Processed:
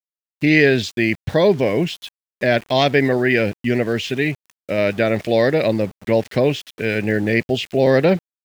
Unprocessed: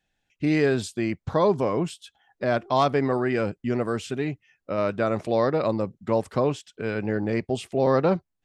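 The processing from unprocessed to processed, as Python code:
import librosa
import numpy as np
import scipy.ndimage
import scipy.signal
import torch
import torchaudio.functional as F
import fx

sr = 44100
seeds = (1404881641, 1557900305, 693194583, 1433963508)

y = fx.curve_eq(x, sr, hz=(640.0, 1200.0, 1800.0, 3000.0, 6500.0, 10000.0), db=(0, -13, 9, 8, 0, -21))
y = np.where(np.abs(y) >= 10.0 ** (-42.5 / 20.0), y, 0.0)
y = F.gain(torch.from_numpy(y), 6.5).numpy()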